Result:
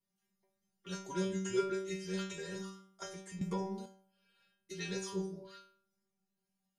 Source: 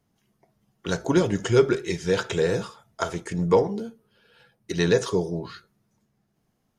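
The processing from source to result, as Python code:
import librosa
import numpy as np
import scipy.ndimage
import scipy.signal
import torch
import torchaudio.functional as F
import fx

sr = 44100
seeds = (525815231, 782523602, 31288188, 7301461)

y = fx.high_shelf(x, sr, hz=4000.0, db=7.5)
y = fx.stiff_resonator(y, sr, f0_hz=190.0, decay_s=0.62, stiffness=0.002)
y = fx.band_squash(y, sr, depth_pct=100, at=(3.41, 3.86))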